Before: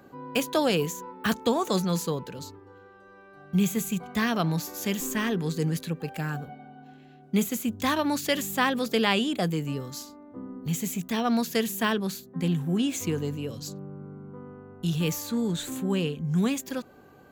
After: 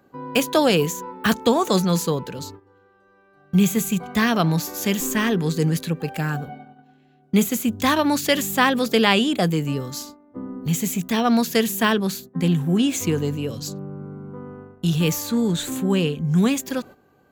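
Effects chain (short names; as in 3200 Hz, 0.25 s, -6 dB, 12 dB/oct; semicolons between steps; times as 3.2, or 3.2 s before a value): gate -45 dBFS, range -12 dB; gain +6.5 dB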